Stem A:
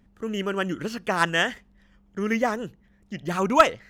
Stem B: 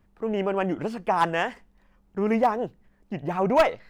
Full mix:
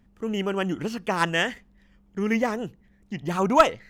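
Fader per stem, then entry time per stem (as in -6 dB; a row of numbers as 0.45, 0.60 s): -1.5, -7.5 dB; 0.00, 0.00 s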